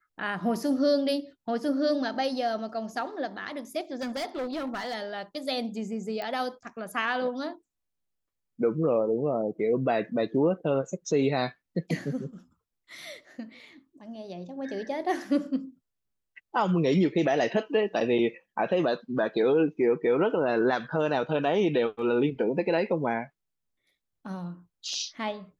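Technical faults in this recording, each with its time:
0:04.01–0:04.95: clipping −28.5 dBFS
0:06.22: click −22 dBFS

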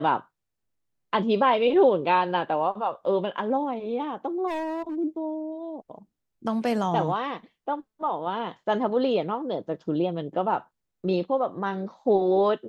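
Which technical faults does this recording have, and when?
0:04.47–0:04.96: clipping −28 dBFS

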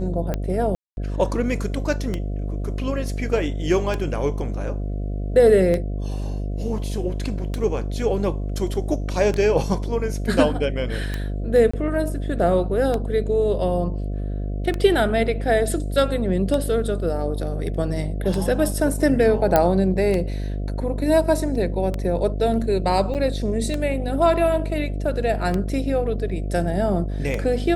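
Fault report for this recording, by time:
mains buzz 50 Hz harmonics 14 −26 dBFS
scratch tick 33 1/3 rpm −12 dBFS
0:00.75–0:00.97: drop-out 221 ms
0:11.71–0:11.73: drop-out 25 ms
0:19.56: click −3 dBFS
0:23.14–0:23.15: drop-out 8.6 ms

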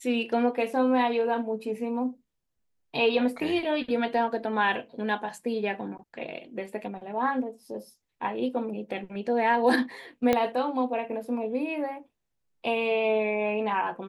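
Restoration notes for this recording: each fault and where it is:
0:10.33: click −10 dBFS

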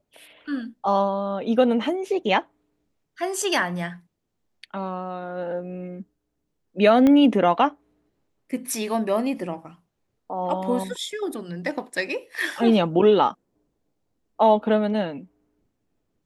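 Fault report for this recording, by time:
0:07.07: click −10 dBFS

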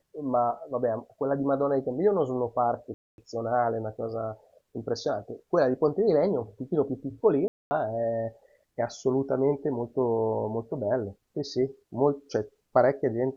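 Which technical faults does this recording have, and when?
0:02.94–0:03.18: drop-out 241 ms
0:07.48–0:07.71: drop-out 230 ms

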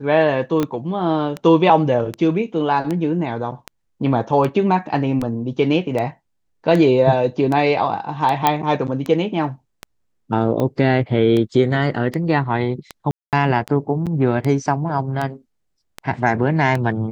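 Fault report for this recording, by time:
scratch tick 78 rpm −11 dBFS
0:00.63: click −9 dBFS
0:08.47: click −1 dBFS
0:13.11–0:13.33: drop-out 218 ms
0:14.06–0:14.07: drop-out 7.2 ms

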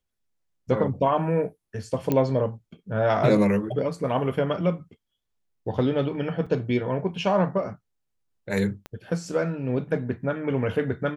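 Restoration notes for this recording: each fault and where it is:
0:02.12: click −11 dBFS
0:06.46–0:06.47: drop-out 5.6 ms
0:08.86: click −22 dBFS

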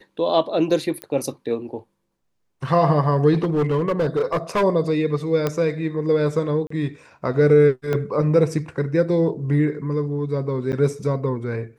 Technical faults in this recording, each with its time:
0:01.02: click −14 dBFS
0:03.33–0:04.64: clipping −16 dBFS
0:05.47: click −9 dBFS
0:06.67–0:06.70: drop-out 34 ms
0:07.93: drop-out 2.4 ms
0:10.72–0:10.73: drop-out 9.4 ms

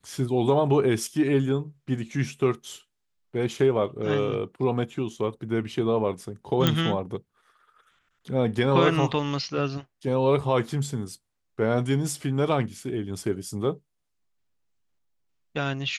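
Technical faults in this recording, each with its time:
0:06.67: click −7 dBFS

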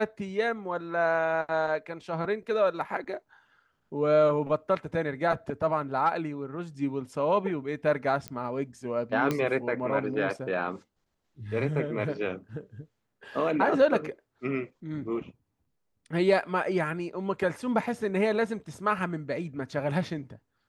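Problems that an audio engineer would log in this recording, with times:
0:08.28: click −19 dBFS
0:09.31: click −14 dBFS

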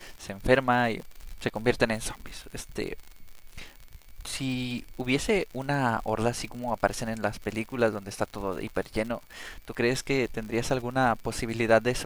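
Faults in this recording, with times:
surface crackle 80 per second −35 dBFS

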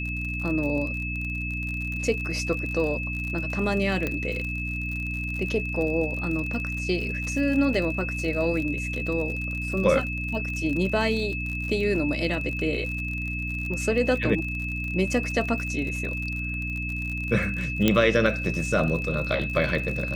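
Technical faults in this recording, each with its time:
surface crackle 50 per second −31 dBFS
mains hum 60 Hz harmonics 5 −32 dBFS
whistle 2,600 Hz −31 dBFS
0:04.07: click −14 dBFS
0:07.74: drop-out 2.7 ms
0:17.88: click −6 dBFS

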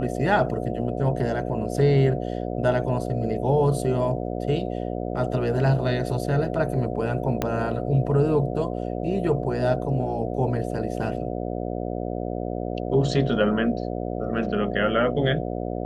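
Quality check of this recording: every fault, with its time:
mains buzz 60 Hz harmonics 12 −29 dBFS
0:07.42: click −10 dBFS

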